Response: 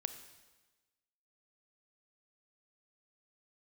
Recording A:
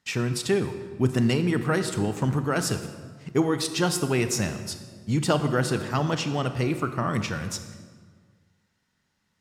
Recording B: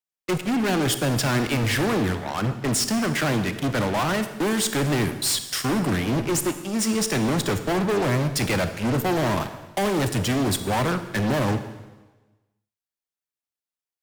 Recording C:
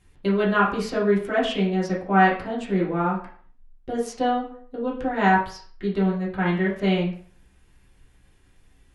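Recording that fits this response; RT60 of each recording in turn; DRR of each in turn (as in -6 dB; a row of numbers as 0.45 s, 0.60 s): B; 1.7 s, 1.2 s, 0.50 s; 8.5 dB, 9.5 dB, -7.0 dB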